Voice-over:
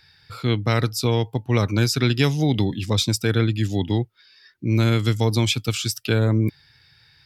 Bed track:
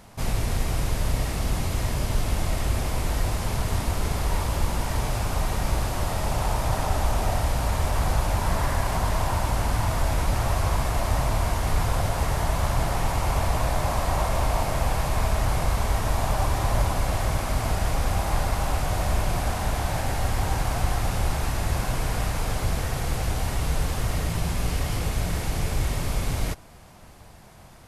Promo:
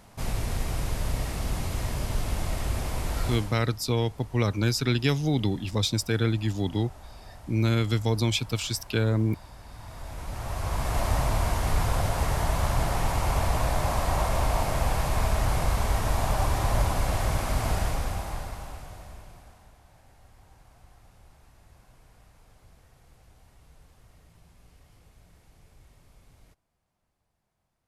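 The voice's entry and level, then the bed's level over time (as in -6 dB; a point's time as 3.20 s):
2.85 s, -5.0 dB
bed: 3.33 s -4 dB
3.69 s -22.5 dB
9.62 s -22.5 dB
10.98 s -1.5 dB
17.78 s -1.5 dB
19.80 s -30.5 dB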